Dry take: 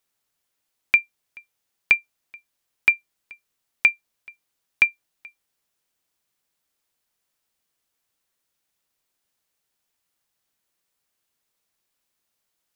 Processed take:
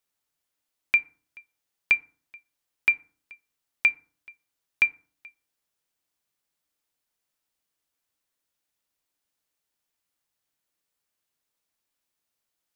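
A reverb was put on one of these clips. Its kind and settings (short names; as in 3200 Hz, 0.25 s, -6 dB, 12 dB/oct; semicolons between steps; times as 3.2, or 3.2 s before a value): FDN reverb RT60 0.44 s, low-frequency decay 1.35×, high-frequency decay 0.5×, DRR 13.5 dB; gain -5 dB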